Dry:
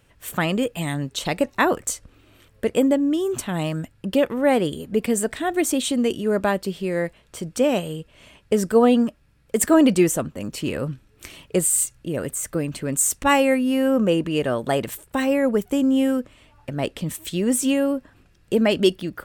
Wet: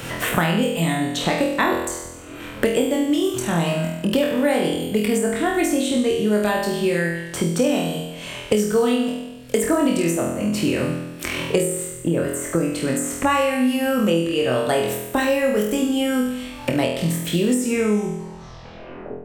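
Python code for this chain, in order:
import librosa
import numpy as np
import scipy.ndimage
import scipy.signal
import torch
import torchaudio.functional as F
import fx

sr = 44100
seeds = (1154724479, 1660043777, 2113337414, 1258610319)

y = fx.tape_stop_end(x, sr, length_s=1.77)
y = fx.room_flutter(y, sr, wall_m=4.1, rt60_s=0.67)
y = fx.band_squash(y, sr, depth_pct=100)
y = y * librosa.db_to_amplitude(-2.5)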